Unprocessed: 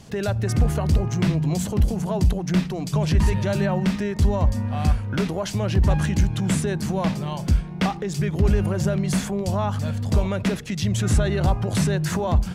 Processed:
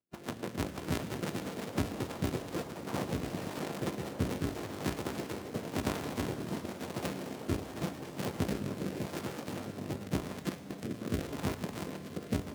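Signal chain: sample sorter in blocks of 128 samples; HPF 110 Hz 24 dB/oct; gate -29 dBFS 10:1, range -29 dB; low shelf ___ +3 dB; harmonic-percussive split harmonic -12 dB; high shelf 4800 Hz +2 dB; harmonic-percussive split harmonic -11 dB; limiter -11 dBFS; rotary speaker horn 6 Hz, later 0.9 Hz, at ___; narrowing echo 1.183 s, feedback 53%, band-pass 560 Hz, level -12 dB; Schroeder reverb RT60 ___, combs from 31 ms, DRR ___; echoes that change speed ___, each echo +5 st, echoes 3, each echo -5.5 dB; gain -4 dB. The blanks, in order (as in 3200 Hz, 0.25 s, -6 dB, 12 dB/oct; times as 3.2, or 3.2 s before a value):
150 Hz, 2.32, 3.1 s, 10 dB, 0.67 s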